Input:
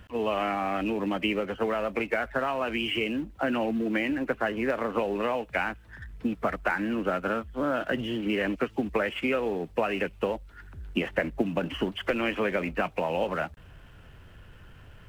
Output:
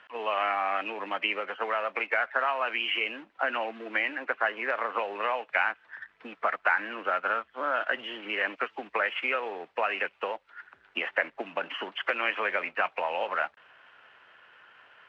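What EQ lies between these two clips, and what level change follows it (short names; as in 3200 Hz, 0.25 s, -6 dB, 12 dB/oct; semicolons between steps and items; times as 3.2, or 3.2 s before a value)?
HPF 940 Hz 12 dB/oct; LPF 2500 Hz 12 dB/oct; +5.5 dB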